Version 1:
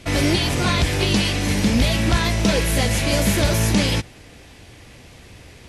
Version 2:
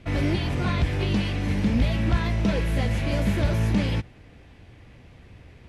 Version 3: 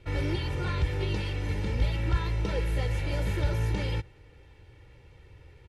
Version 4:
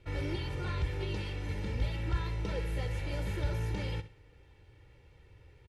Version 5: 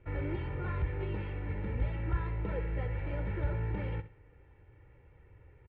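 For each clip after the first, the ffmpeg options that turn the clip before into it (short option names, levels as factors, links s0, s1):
-af "bass=f=250:g=5,treble=f=4000:g=-14,volume=0.422"
-af "aecho=1:1:2.2:0.77,volume=0.447"
-af "aecho=1:1:66|132|198:0.2|0.0579|0.0168,volume=0.531"
-af "lowpass=f=2200:w=0.5412,lowpass=f=2200:w=1.3066"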